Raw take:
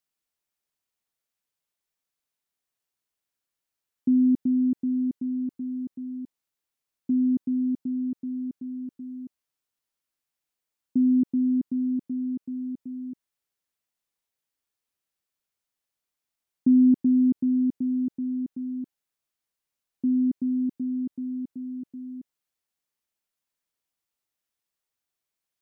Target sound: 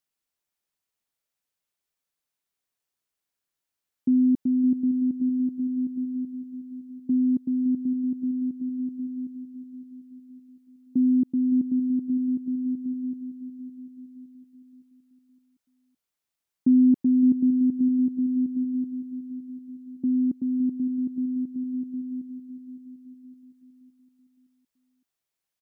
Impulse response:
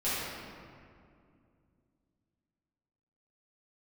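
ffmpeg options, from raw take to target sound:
-af "aecho=1:1:563|1126|1689|2252|2815:0.251|0.131|0.0679|0.0353|0.0184"

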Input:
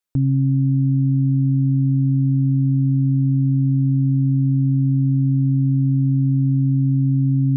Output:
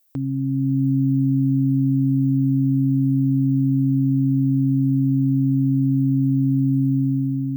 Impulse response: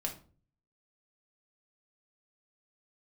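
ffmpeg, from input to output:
-af "aemphasis=mode=production:type=bsi,dynaudnorm=f=170:g=7:m=2,equalizer=f=110:w=0.37:g=-7,volume=1.88"

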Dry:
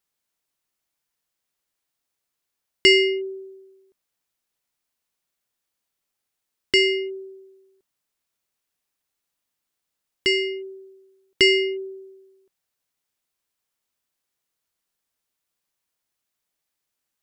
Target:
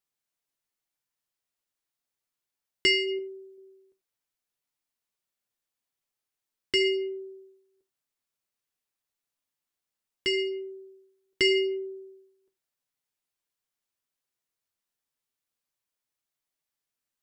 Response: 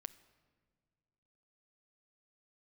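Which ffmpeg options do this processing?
-filter_complex "[0:a]asettb=1/sr,asplit=3[s0][s1][s2];[s0]atrim=end=3.184[s3];[s1]atrim=start=3.18:end=3.58,asetpts=PTS-STARTPTS,afade=t=in:d=0.004:c=qsin,afade=t=out:st=0.396:d=0.004:c=qsin,aecho=1:1:6.5:0.45,atrim=end_sample=17640[s4];[s2]atrim=start=3.576[s5];[s3][s4]acrossfade=d=0.004:c1=hsin:c2=qsin[s6];[s6][s5]acrossfade=d=0.004:c1=qsin:c2=hsin,flanger=delay=7.8:depth=1.2:regen=-39:speed=0.85:shape=sinusoidal[s7];[1:a]atrim=start_sample=2205,atrim=end_sample=4410[s8];[s7][s8]afir=irnorm=-1:irlink=0,volume=1.26"

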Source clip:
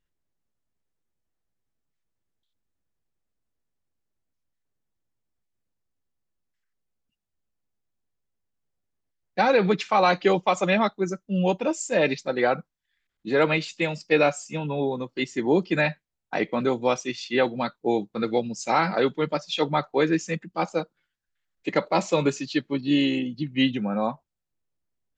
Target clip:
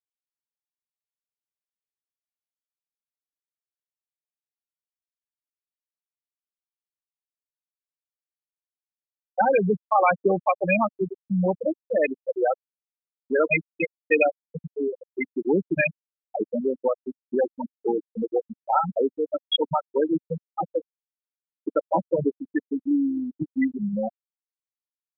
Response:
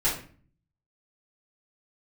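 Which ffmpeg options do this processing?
-filter_complex "[0:a]afftfilt=real='re*gte(hypot(re,im),0.355)':imag='im*gte(hypot(re,im),0.355)':win_size=1024:overlap=0.75,firequalizer=gain_entry='entry(100,0);entry(260,-3);entry(930,1);entry(4200,14);entry(6800,-24)':delay=0.05:min_phase=1,asplit=2[s0][s1];[s1]acompressor=threshold=0.0178:ratio=6,volume=1.26[s2];[s0][s2]amix=inputs=2:normalize=0"

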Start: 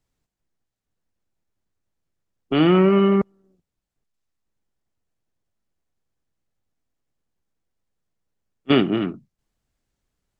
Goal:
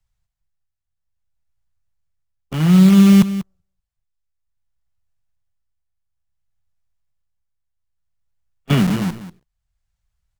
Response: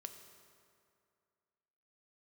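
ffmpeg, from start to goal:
-filter_complex "[0:a]lowshelf=f=240:t=q:w=3:g=9.5,acrossover=split=100|510[s0][s1][s2];[s1]acrusher=bits=4:dc=4:mix=0:aa=0.000001[s3];[s0][s3][s2]amix=inputs=3:normalize=0,tremolo=f=0.59:d=0.51,aecho=1:1:191:0.2,volume=0.841"

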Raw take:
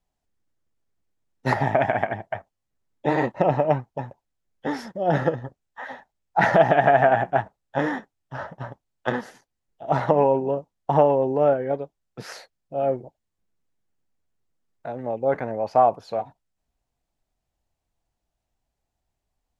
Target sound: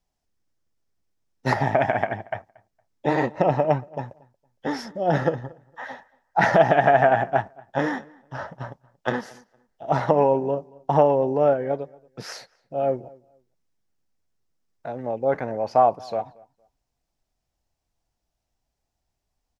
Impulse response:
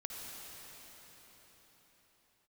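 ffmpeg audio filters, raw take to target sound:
-filter_complex "[0:a]equalizer=f=5400:w=2.7:g=6,asplit=2[s0][s1];[s1]adelay=231,lowpass=f=2400:p=1,volume=0.0631,asplit=2[s2][s3];[s3]adelay=231,lowpass=f=2400:p=1,volume=0.23[s4];[s2][s4]amix=inputs=2:normalize=0[s5];[s0][s5]amix=inputs=2:normalize=0"

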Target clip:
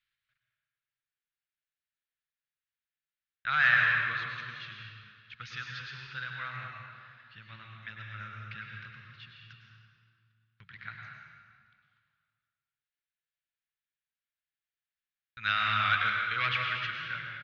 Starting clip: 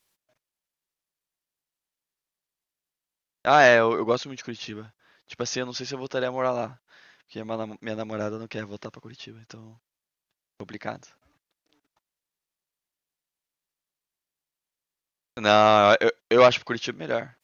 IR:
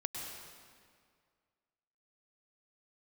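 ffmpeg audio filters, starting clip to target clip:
-filter_complex "[0:a]firequalizer=gain_entry='entry(130,0);entry(270,-25);entry(680,-26);entry(1400,7);entry(3800,1);entry(5900,-17)':delay=0.05:min_phase=1[s0];[1:a]atrim=start_sample=2205[s1];[s0][s1]afir=irnorm=-1:irlink=0,volume=0.398"

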